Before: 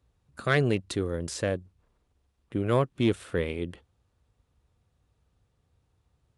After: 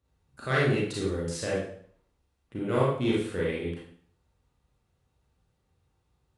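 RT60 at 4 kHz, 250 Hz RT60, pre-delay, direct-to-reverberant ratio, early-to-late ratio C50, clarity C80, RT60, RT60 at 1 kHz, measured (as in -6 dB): 0.50 s, 0.55 s, 27 ms, -7.0 dB, 0.0 dB, 5.5 dB, 0.55 s, 0.55 s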